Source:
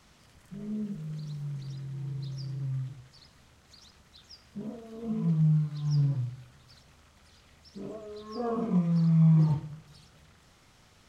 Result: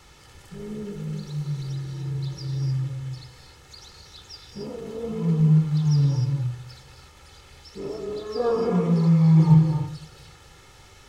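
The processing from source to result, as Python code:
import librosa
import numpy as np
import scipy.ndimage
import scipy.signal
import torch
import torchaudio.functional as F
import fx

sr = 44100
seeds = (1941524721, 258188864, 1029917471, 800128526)

y = x + 0.62 * np.pad(x, (int(2.3 * sr / 1000.0), 0))[:len(x)]
y = fx.rev_gated(y, sr, seeds[0], gate_ms=320, shape='rising', drr_db=3.5)
y = y * librosa.db_to_amplitude(7.0)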